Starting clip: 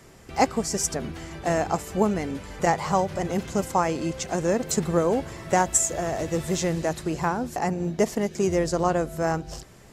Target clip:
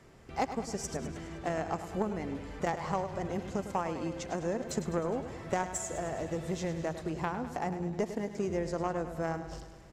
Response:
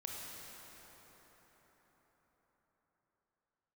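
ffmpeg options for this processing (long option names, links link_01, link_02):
-af "lowpass=frequency=3200:poles=1,acompressor=threshold=-28dB:ratio=2,aeval=exprs='0.178*(cos(1*acos(clip(val(0)/0.178,-1,1)))-cos(1*PI/2))+0.02*(cos(3*acos(clip(val(0)/0.178,-1,1)))-cos(3*PI/2))':channel_layout=same,aecho=1:1:103|206|309|412|515|618|721:0.282|0.166|0.0981|0.0579|0.0342|0.0201|0.0119,volume=-2.5dB"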